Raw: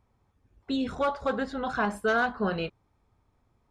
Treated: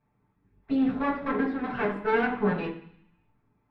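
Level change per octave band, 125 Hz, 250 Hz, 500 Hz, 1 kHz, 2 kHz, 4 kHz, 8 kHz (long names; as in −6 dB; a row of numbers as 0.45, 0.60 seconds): +2.5 dB, +4.5 dB, +0.5 dB, −1.0 dB, −1.0 dB, −7.5 dB, below −20 dB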